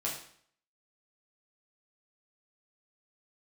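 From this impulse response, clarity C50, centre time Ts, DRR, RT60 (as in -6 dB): 5.5 dB, 34 ms, -5.5 dB, 0.60 s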